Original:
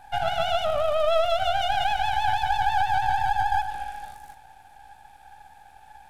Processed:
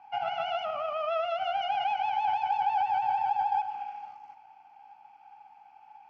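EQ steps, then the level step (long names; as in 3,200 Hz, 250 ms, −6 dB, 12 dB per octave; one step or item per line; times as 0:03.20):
high-pass filter 360 Hz 12 dB per octave
high-frequency loss of the air 290 metres
phaser with its sweep stopped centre 2,500 Hz, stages 8
0.0 dB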